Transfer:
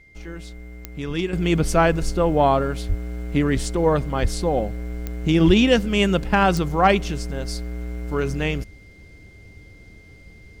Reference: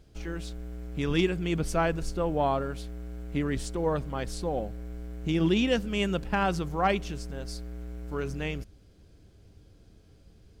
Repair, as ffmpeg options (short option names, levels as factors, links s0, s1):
-filter_complex "[0:a]adeclick=t=4,bandreject=f=2100:w=30,asplit=3[s0][s1][s2];[s0]afade=t=out:st=2.88:d=0.02[s3];[s1]highpass=f=140:w=0.5412,highpass=f=140:w=1.3066,afade=t=in:st=2.88:d=0.02,afade=t=out:st=3:d=0.02[s4];[s2]afade=t=in:st=3:d=0.02[s5];[s3][s4][s5]amix=inputs=3:normalize=0,asplit=3[s6][s7][s8];[s6]afade=t=out:st=4.21:d=0.02[s9];[s7]highpass=f=140:w=0.5412,highpass=f=140:w=1.3066,afade=t=in:st=4.21:d=0.02,afade=t=out:st=4.33:d=0.02[s10];[s8]afade=t=in:st=4.33:d=0.02[s11];[s9][s10][s11]amix=inputs=3:normalize=0,asplit=3[s12][s13][s14];[s12]afade=t=out:st=5.46:d=0.02[s15];[s13]highpass=f=140:w=0.5412,highpass=f=140:w=1.3066,afade=t=in:st=5.46:d=0.02,afade=t=out:st=5.58:d=0.02[s16];[s14]afade=t=in:st=5.58:d=0.02[s17];[s15][s16][s17]amix=inputs=3:normalize=0,asetnsamples=n=441:p=0,asendcmd='1.33 volume volume -9dB',volume=1"